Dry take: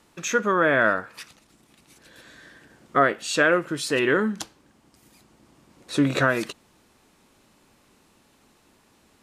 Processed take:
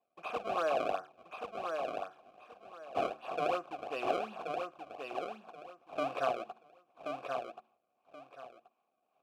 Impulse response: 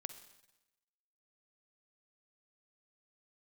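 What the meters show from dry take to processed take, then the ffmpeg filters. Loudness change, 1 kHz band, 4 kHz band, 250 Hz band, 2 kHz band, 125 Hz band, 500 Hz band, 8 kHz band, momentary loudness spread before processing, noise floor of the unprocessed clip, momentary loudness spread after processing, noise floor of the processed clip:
-15.0 dB, -8.0 dB, -15.0 dB, -19.5 dB, -20.5 dB, -23.5 dB, -10.0 dB, under -25 dB, 11 LU, -61 dBFS, 19 LU, -81 dBFS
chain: -filter_complex "[0:a]acrusher=samples=28:mix=1:aa=0.000001:lfo=1:lforange=44.8:lforate=2.7,agate=range=-9dB:threshold=-54dB:ratio=16:detection=peak,asplit=3[a][b][c];[a]bandpass=f=730:t=q:w=8,volume=0dB[d];[b]bandpass=f=1.09k:t=q:w=8,volume=-6dB[e];[c]bandpass=f=2.44k:t=q:w=8,volume=-9dB[f];[d][e][f]amix=inputs=3:normalize=0,bandreject=f=74.79:t=h:w=4,bandreject=f=149.58:t=h:w=4,bandreject=f=224.37:t=h:w=4,bandreject=f=299.16:t=h:w=4,bandreject=f=373.95:t=h:w=4,asplit=2[g][h];[h]aecho=0:1:1079|2158|3237:0.562|0.129|0.0297[i];[g][i]amix=inputs=2:normalize=0"

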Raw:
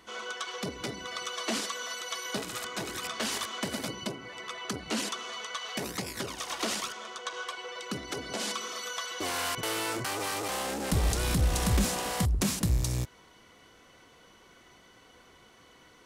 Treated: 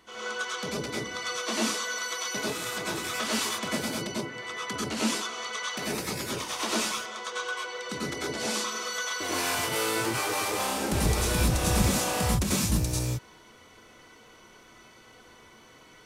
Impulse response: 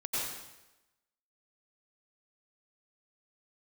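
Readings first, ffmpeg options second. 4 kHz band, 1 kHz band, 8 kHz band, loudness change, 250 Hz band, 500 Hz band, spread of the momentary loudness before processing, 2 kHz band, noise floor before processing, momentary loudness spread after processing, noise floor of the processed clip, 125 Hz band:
+3.0 dB, +3.5 dB, +4.5 dB, +3.5 dB, +4.0 dB, +4.5 dB, 10 LU, +5.0 dB, -58 dBFS, 8 LU, -54 dBFS, +1.5 dB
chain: -filter_complex "[1:a]atrim=start_sample=2205,atrim=end_sample=6174[a];[0:a][a]afir=irnorm=-1:irlink=0,volume=1dB"

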